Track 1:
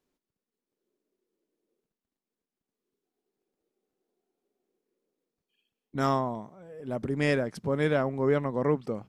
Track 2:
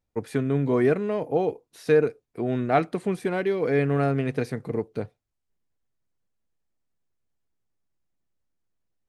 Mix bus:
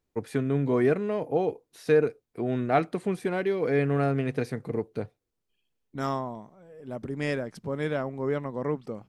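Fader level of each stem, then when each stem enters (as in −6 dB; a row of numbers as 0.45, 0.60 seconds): −3.5, −2.0 decibels; 0.00, 0.00 seconds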